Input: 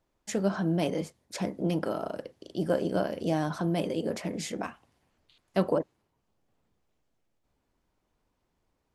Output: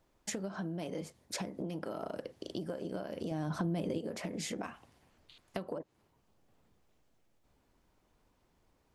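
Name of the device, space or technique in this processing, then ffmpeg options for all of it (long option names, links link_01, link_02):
serial compression, peaks first: -filter_complex "[0:a]acompressor=threshold=-35dB:ratio=6,acompressor=threshold=-41dB:ratio=3,asettb=1/sr,asplit=3[link_01][link_02][link_03];[link_01]atrim=end=3.314[link_04];[link_02]atrim=start=3.31:end=3.98,asetpts=PTS-STARTPTS,afade=type=in:duration=0.004:curve=qsin,afade=type=out:start_time=0.666:duration=0.004:curve=qsin,lowshelf=frequency=320:gain=9[link_05];[link_03]atrim=start=3.976[link_06];[link_04][link_05]acrossfade=duration=0.004:curve1=hsin:curve2=qsin[link_07];[link_07][link_06]acrossfade=duration=0.004:curve1=qsin:curve2=hsin,volume=4.5dB"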